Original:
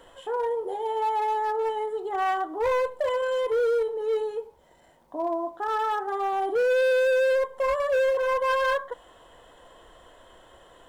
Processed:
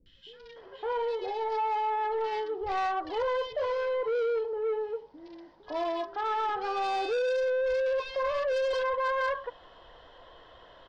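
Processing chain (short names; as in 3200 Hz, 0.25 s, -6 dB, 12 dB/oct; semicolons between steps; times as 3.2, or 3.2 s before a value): elliptic low-pass 5000 Hz, stop band 50 dB; high shelf 3700 Hz +8 dB; three bands offset in time lows, highs, mids 60/560 ms, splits 250/2400 Hz; soft clip -24.5 dBFS, distortion -13 dB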